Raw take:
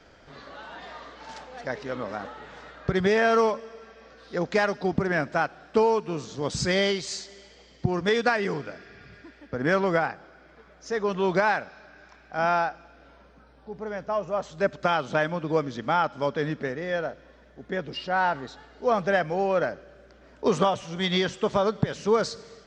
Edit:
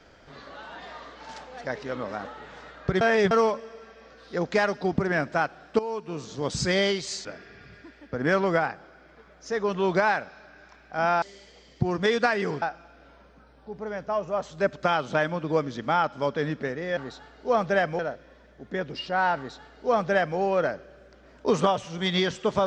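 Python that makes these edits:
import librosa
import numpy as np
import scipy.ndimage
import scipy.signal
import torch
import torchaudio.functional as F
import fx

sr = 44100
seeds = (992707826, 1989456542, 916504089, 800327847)

y = fx.edit(x, sr, fx.reverse_span(start_s=3.01, length_s=0.3),
    fx.fade_in_from(start_s=5.79, length_s=0.55, floor_db=-15.0),
    fx.move(start_s=7.25, length_s=1.4, to_s=12.62),
    fx.duplicate(start_s=18.34, length_s=1.02, to_s=16.97), tone=tone)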